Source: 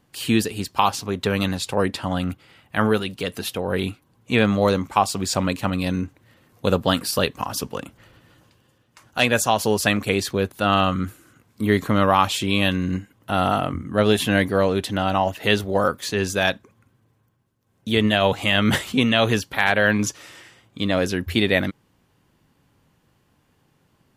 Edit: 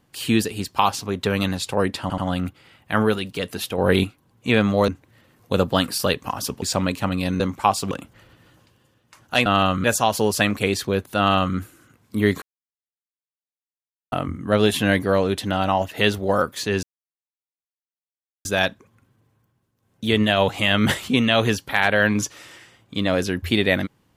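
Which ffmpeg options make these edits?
-filter_complex "[0:a]asplit=14[a][b][c][d][e][f][g][h][i][j][k][l][m][n];[a]atrim=end=2.102[o];[b]atrim=start=2.018:end=2.102[p];[c]atrim=start=2.018:end=3.622[q];[d]atrim=start=3.618:end=3.882,asetpts=PTS-STARTPTS,volume=6dB[r];[e]atrim=start=3.878:end=4.722[s];[f]atrim=start=6.008:end=7.752[t];[g]atrim=start=5.228:end=6.012[u];[h]atrim=start=4.718:end=5.232[v];[i]atrim=start=7.748:end=9.302[w];[j]atrim=start=10.638:end=11.022[x];[k]atrim=start=9.298:end=11.88,asetpts=PTS-STARTPTS,afade=t=out:st=2.578:d=0.004:c=hsin[y];[l]atrim=start=11.88:end=13.58,asetpts=PTS-STARTPTS,volume=0[z];[m]atrim=start=13.58:end=16.29,asetpts=PTS-STARTPTS,afade=t=in:d=0.004:c=hsin,afade=t=out:st=2.706:d=0.004:c=hsin,apad=pad_dur=1.62[aa];[n]atrim=start=16.29,asetpts=PTS-STARTPTS,afade=t=in:d=0.004:c=hsin[ab];[o][p]acrossfade=d=0.004:c1=hsin:c2=hsin[ac];[ac][q]acrossfade=d=0.004:c1=hsin:c2=hsin[ad];[ad][r]acrossfade=d=0.004:c1=hsin:c2=hsin[ae];[ae][s]acrossfade=d=0.004:c1=hsin:c2=hsin[af];[af][t]acrossfade=d=0.004:c1=hsin:c2=hsin[ag];[ag][u]acrossfade=d=0.004:c1=hsin:c2=hsin[ah];[ah][v]acrossfade=d=0.004:c1=hsin:c2=hsin[ai];[ai][w]acrossfade=d=0.004:c1=hsin:c2=hsin[aj];[aj][x]acrossfade=d=0.004:c1=hsin:c2=hsin[ak];[y][z][aa][ab]concat=n=4:v=0:a=1[al];[ak][al]acrossfade=d=0.004:c1=hsin:c2=hsin"

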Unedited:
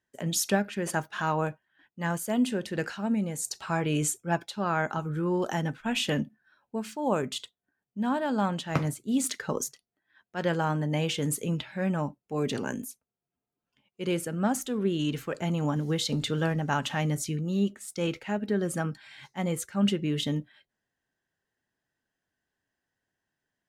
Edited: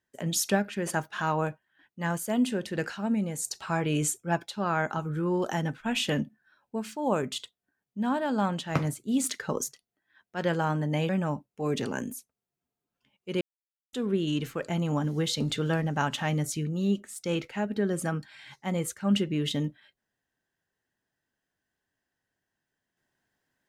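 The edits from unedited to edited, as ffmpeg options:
-filter_complex "[0:a]asplit=4[a][b][c][d];[a]atrim=end=11.092[e];[b]atrim=start=11.808:end=14.13,asetpts=PTS-STARTPTS,afade=t=out:st=2.318:d=0.004:c=hsin[f];[c]atrim=start=14.13:end=14.65,asetpts=PTS-STARTPTS,volume=0[g];[d]atrim=start=14.65,asetpts=PTS-STARTPTS,afade=t=in:d=0.004:c=hsin[h];[f][g][h]concat=n=3:v=0:a=1[i];[e][i]acrossfade=d=0.004:c1=hsin:c2=hsin"

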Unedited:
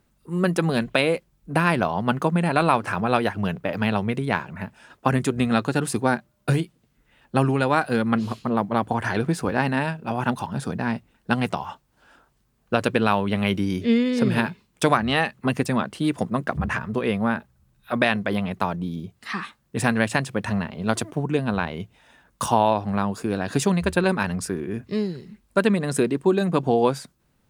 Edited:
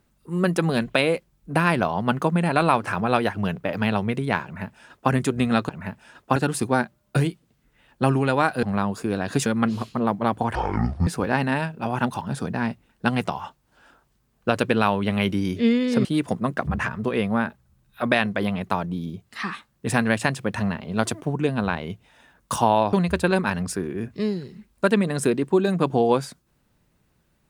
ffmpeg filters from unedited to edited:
-filter_complex "[0:a]asplit=9[a][b][c][d][e][f][g][h][i];[a]atrim=end=5.692[j];[b]atrim=start=4.438:end=5.112[k];[c]atrim=start=5.688:end=7.962[l];[d]atrim=start=22.828:end=23.662[m];[e]atrim=start=7.958:end=9.054[n];[f]atrim=start=9.05:end=9.32,asetpts=PTS-STARTPTS,asetrate=22932,aresample=44100,atrim=end_sample=22898,asetpts=PTS-STARTPTS[o];[g]atrim=start=9.316:end=14.302[p];[h]atrim=start=15.948:end=22.832[q];[i]atrim=start=23.658[r];[j][k]acrossfade=d=0.004:c1=hsin:c2=hsin[s];[s][l]acrossfade=d=0.004:c1=hsin:c2=hsin[t];[t][m]acrossfade=d=0.004:c1=hsin:c2=hsin[u];[u][n]acrossfade=d=0.004:c1=hsin:c2=hsin[v];[v][o]acrossfade=d=0.004:c1=hsin:c2=hsin[w];[w][p]acrossfade=d=0.004:c1=hsin:c2=hsin[x];[x][q]acrossfade=d=0.004:c1=hsin:c2=hsin[y];[y][r]acrossfade=d=0.004:c1=hsin:c2=hsin"

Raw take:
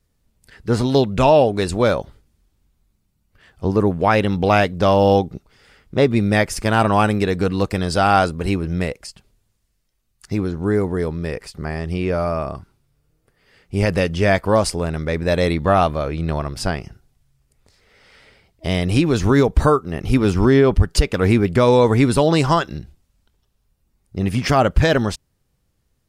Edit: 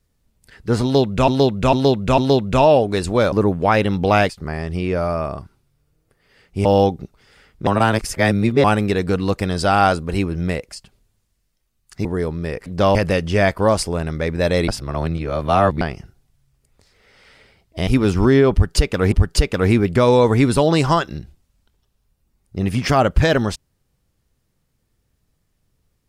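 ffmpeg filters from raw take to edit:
-filter_complex "[0:a]asplit=16[a][b][c][d][e][f][g][h][i][j][k][l][m][n][o][p];[a]atrim=end=1.282[q];[b]atrim=start=0.828:end=1.282[r];[c]atrim=start=0.828:end=1.282[s];[d]atrim=start=0.828:end=1.972[t];[e]atrim=start=3.708:end=4.682[u];[f]atrim=start=11.458:end=13.822[v];[g]atrim=start=4.968:end=5.992[w];[h]atrim=start=5.988:end=6.962,asetpts=PTS-STARTPTS,areverse[x];[i]atrim=start=6.958:end=10.372[y];[j]atrim=start=10.848:end=11.462[z];[k]atrim=start=4.678:end=4.972[aa];[l]atrim=start=13.818:end=15.552[ab];[m]atrim=start=15.548:end=16.682,asetpts=PTS-STARTPTS,areverse[ac];[n]atrim=start=16.678:end=18.742[ad];[o]atrim=start=20.068:end=21.322[ae];[p]atrim=start=20.718[af];[q][r]acrossfade=d=0.004:c1=hsin:c2=hsin[ag];[ag][s]acrossfade=d=0.004:c1=hsin:c2=hsin[ah];[ah][t]acrossfade=d=0.004:c1=hsin:c2=hsin[ai];[ai][u]acrossfade=d=0.004:c1=hsin:c2=hsin[aj];[aj][v]acrossfade=d=0.004:c1=hsin:c2=hsin[ak];[ak][w]acrossfade=d=0.004:c1=hsin:c2=hsin[al];[al][x]acrossfade=d=0.004:c1=hsin:c2=hsin[am];[am][y]acrossfade=d=0.004:c1=hsin:c2=hsin[an];[an][z]acrossfade=d=0.004:c1=hsin:c2=hsin[ao];[ao][aa]acrossfade=d=0.004:c1=hsin:c2=hsin[ap];[ap][ab]acrossfade=d=0.004:c1=hsin:c2=hsin[aq];[aq][ac]acrossfade=d=0.004:c1=hsin:c2=hsin[ar];[ar][ad]acrossfade=d=0.004:c1=hsin:c2=hsin[as];[as][ae]acrossfade=d=0.004:c1=hsin:c2=hsin[at];[at][af]acrossfade=d=0.004:c1=hsin:c2=hsin"

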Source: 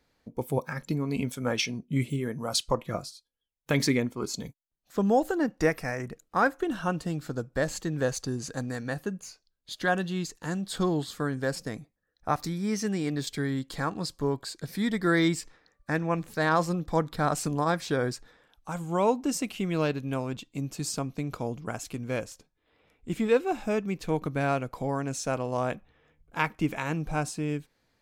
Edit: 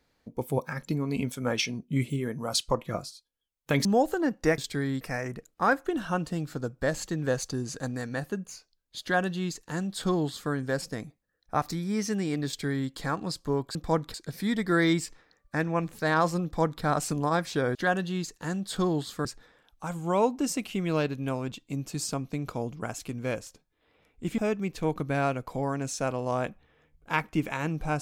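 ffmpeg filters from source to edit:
-filter_complex "[0:a]asplit=9[a][b][c][d][e][f][g][h][i];[a]atrim=end=3.852[j];[b]atrim=start=5.018:end=5.752[k];[c]atrim=start=13.208:end=13.642[l];[d]atrim=start=5.748:end=14.492[m];[e]atrim=start=16.788:end=17.182[n];[f]atrim=start=14.488:end=18.102[o];[g]atrim=start=9.758:end=11.262[p];[h]atrim=start=18.098:end=23.232[q];[i]atrim=start=23.638[r];[j][k]acrossfade=d=0.004:c1=hsin:c2=hsin[s];[s][l]acrossfade=d=0.004:c1=hsin:c2=hsin[t];[t][m]acrossfade=d=0.004:c1=hsin:c2=hsin[u];[u][n]acrossfade=d=0.004:c1=hsin:c2=hsin[v];[v][o]acrossfade=d=0.004:c1=hsin:c2=hsin[w];[w][p]acrossfade=d=0.004:c1=hsin:c2=hsin[x];[x][q]acrossfade=d=0.004:c1=hsin:c2=hsin[y];[y][r]acrossfade=d=0.004:c1=hsin:c2=hsin"

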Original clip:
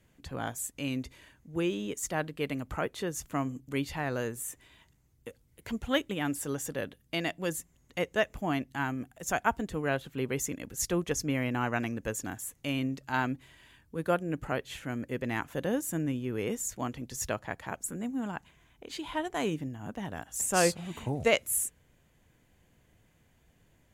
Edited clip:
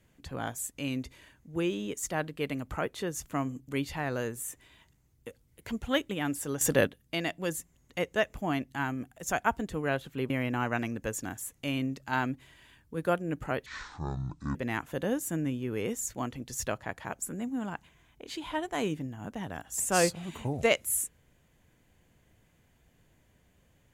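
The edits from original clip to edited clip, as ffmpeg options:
-filter_complex "[0:a]asplit=6[a][b][c][d][e][f];[a]atrim=end=6.612[g];[b]atrim=start=6.608:end=6.872,asetpts=PTS-STARTPTS,volume=10.5dB[h];[c]atrim=start=6.868:end=10.302[i];[d]atrim=start=11.308:end=14.674[j];[e]atrim=start=14.67:end=15.17,asetpts=PTS-STARTPTS,asetrate=24696,aresample=44100[k];[f]atrim=start=15.166[l];[g][h]acrossfade=d=0.004:c1=hsin:c2=hsin[m];[m][i]acrossfade=d=0.004:c1=hsin:c2=hsin[n];[n][j]acrossfade=d=0.004:c1=hsin:c2=hsin[o];[o][k]acrossfade=d=0.004:c1=hsin:c2=hsin[p];[p][l]acrossfade=d=0.004:c1=hsin:c2=hsin"

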